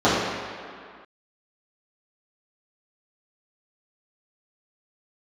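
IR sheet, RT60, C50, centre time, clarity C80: no single decay rate, -1.0 dB, 115 ms, 1.0 dB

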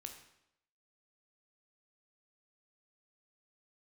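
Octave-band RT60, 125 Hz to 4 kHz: 0.80 s, 0.80 s, 0.80 s, 0.80 s, 0.75 s, 0.70 s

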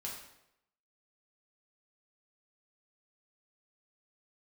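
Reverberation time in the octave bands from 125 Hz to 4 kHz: 0.80 s, 0.80 s, 0.85 s, 0.80 s, 0.75 s, 0.65 s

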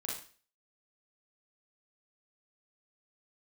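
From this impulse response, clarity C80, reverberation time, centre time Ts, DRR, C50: 9.0 dB, 0.40 s, 43 ms, -4.5 dB, 3.5 dB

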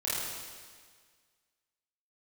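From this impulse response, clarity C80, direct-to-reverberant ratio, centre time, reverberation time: -0.5 dB, -9.5 dB, 124 ms, 1.7 s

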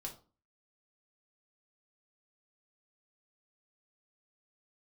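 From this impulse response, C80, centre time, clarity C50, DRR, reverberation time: 16.5 dB, 15 ms, 11.0 dB, -0.5 dB, 0.35 s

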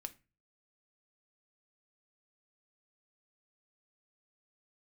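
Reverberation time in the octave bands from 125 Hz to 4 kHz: 0.55 s, 0.40 s, 0.30 s, 0.30 s, 0.30 s, 0.25 s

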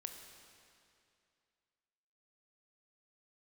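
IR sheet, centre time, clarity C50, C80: 49 ms, 6.0 dB, 7.0 dB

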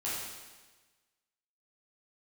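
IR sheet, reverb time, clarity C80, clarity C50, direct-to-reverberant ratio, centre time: 1.3 s, 2.0 dB, -1.0 dB, -9.5 dB, 88 ms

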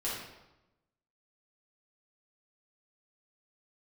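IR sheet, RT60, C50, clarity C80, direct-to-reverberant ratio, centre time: 0.95 s, 0.5 dB, 4.0 dB, -8.0 dB, 64 ms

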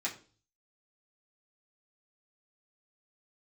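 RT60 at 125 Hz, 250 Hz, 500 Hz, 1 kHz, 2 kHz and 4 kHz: 0.70 s, 0.50 s, 0.45 s, 0.35 s, 0.35 s, 0.40 s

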